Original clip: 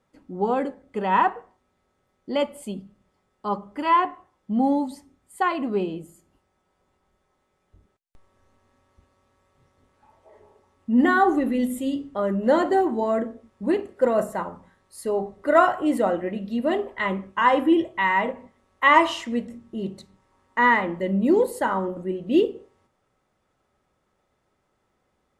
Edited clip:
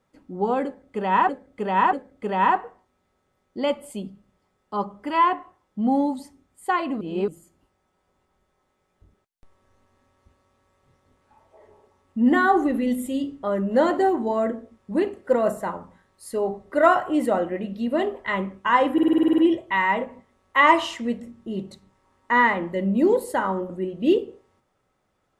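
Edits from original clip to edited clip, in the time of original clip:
0:00.65–0:01.29: repeat, 3 plays
0:05.73–0:06.00: reverse
0:17.65: stutter 0.05 s, 10 plays

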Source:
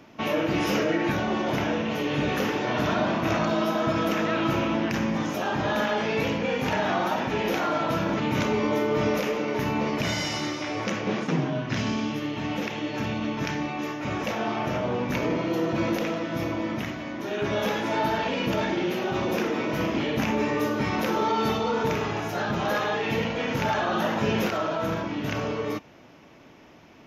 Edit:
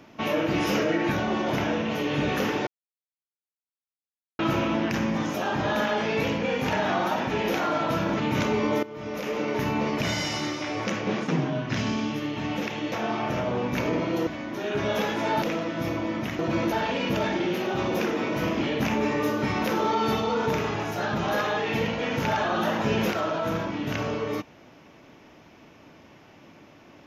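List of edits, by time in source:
0:02.67–0:04.39: silence
0:08.83–0:09.40: fade in quadratic, from −16 dB
0:12.92–0:14.29: remove
0:15.64–0:15.97: swap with 0:16.94–0:18.09

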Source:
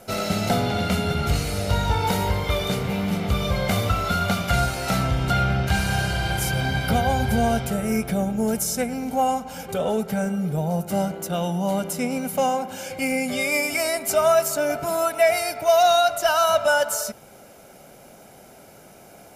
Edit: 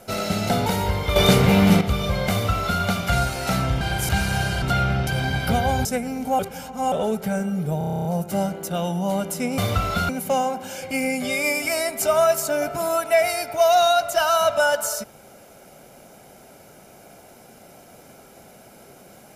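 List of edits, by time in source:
0:00.66–0:02.07: remove
0:02.57–0:03.22: clip gain +9.5 dB
0:03.72–0:04.23: duplicate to 0:12.17
0:05.22–0:05.67: swap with 0:06.20–0:06.48
0:07.26–0:08.71: remove
0:09.25–0:09.78: reverse
0:10.64: stutter 0.03 s, 10 plays

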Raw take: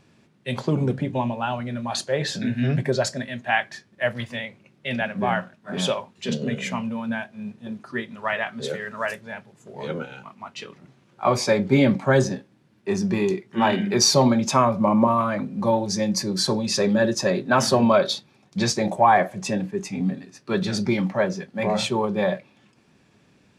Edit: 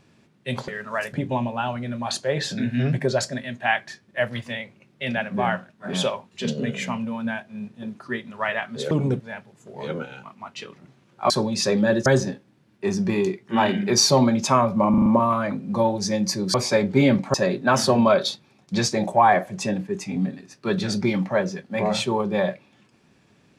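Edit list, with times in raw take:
0:00.68–0:00.97: swap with 0:08.75–0:09.20
0:11.30–0:12.10: swap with 0:16.42–0:17.18
0:14.94: stutter 0.04 s, 5 plays

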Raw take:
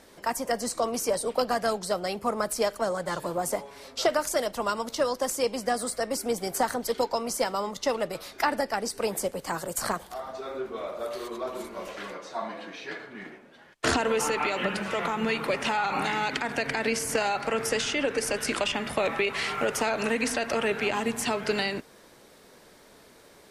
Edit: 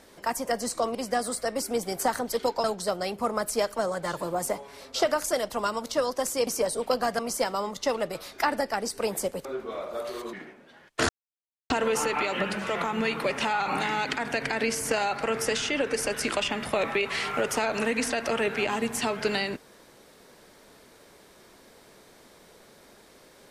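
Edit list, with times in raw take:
0:00.95–0:01.67: swap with 0:05.50–0:07.19
0:09.45–0:10.51: remove
0:11.39–0:13.18: remove
0:13.94: splice in silence 0.61 s

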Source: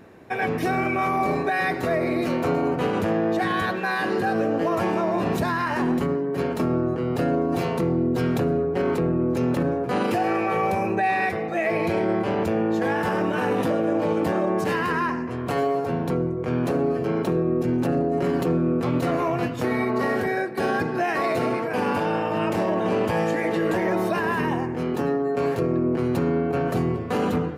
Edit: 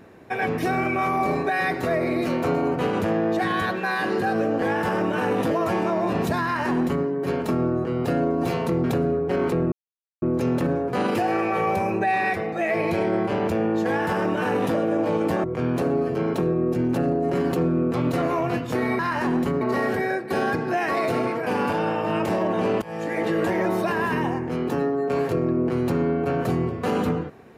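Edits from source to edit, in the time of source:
0:05.54–0:06.16: duplicate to 0:19.88
0:07.95–0:08.30: remove
0:09.18: splice in silence 0.50 s
0:12.82–0:13.71: duplicate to 0:04.62
0:14.40–0:16.33: remove
0:23.09–0:23.50: fade in, from −22 dB

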